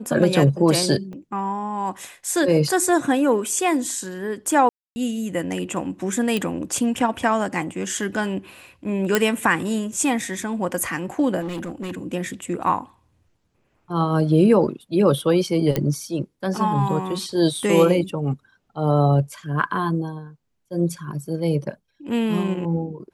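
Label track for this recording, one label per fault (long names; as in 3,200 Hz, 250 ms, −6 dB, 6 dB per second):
1.130000	1.130000	drop-out 2.6 ms
4.690000	4.960000	drop-out 270 ms
6.370000	6.370000	click −11 dBFS
9.150000	9.150000	click −3 dBFS
11.400000	11.920000	clipping −25.5 dBFS
15.760000	15.760000	click −8 dBFS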